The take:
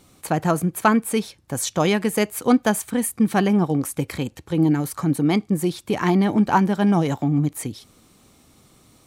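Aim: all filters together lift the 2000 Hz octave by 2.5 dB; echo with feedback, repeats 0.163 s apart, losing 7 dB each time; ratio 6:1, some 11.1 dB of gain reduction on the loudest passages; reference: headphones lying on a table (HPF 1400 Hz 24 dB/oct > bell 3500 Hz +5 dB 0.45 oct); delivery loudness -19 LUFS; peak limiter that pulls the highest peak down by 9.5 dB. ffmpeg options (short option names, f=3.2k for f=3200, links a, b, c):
-af "equalizer=f=2k:t=o:g=4,acompressor=threshold=-24dB:ratio=6,alimiter=limit=-20.5dB:level=0:latency=1,highpass=f=1.4k:w=0.5412,highpass=f=1.4k:w=1.3066,equalizer=f=3.5k:t=o:w=0.45:g=5,aecho=1:1:163|326|489|652|815:0.447|0.201|0.0905|0.0407|0.0183,volume=17dB"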